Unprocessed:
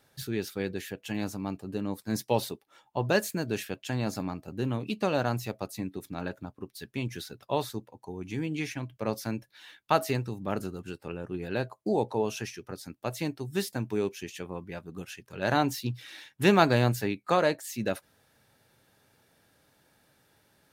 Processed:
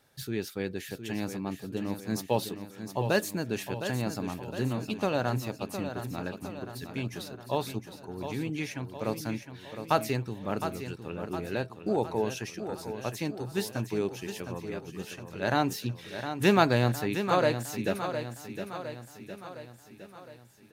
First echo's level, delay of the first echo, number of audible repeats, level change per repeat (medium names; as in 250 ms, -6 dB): -9.0 dB, 711 ms, 5, -5.5 dB